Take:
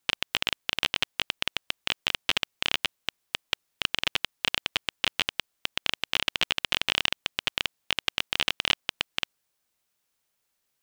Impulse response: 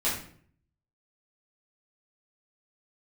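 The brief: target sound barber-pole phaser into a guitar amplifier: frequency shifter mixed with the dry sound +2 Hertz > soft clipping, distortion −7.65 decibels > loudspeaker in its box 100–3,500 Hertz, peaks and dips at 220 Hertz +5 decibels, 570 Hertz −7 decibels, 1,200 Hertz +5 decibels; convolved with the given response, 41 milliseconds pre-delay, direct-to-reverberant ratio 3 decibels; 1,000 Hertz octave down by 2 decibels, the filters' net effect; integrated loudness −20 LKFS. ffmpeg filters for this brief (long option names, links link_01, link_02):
-filter_complex "[0:a]equalizer=frequency=1000:width_type=o:gain=-5.5,asplit=2[link_01][link_02];[1:a]atrim=start_sample=2205,adelay=41[link_03];[link_02][link_03]afir=irnorm=-1:irlink=0,volume=-12.5dB[link_04];[link_01][link_04]amix=inputs=2:normalize=0,asplit=2[link_05][link_06];[link_06]afreqshift=2[link_07];[link_05][link_07]amix=inputs=2:normalize=1,asoftclip=threshold=-20dB,highpass=100,equalizer=frequency=220:width_type=q:width=4:gain=5,equalizer=frequency=570:width_type=q:width=4:gain=-7,equalizer=frequency=1200:width_type=q:width=4:gain=5,lowpass=frequency=3500:width=0.5412,lowpass=frequency=3500:width=1.3066,volume=15dB"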